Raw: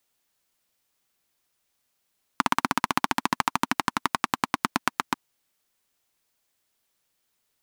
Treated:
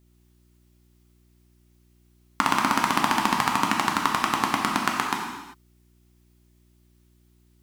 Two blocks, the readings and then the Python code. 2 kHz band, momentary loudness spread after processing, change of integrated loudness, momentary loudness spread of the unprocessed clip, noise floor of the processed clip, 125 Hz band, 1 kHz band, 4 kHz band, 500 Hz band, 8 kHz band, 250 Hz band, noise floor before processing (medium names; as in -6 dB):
+3.0 dB, 6 LU, +3.5 dB, 4 LU, -60 dBFS, +3.5 dB, +3.5 dB, +3.5 dB, +3.5 dB, +3.5 dB, +3.5 dB, -76 dBFS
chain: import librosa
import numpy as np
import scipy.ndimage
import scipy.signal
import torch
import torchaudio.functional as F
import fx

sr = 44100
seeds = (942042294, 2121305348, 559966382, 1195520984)

y = fx.rev_gated(x, sr, seeds[0], gate_ms=420, shape='falling', drr_db=-1.0)
y = fx.dmg_buzz(y, sr, base_hz=60.0, harmonics=6, level_db=-60.0, tilt_db=-5, odd_only=False)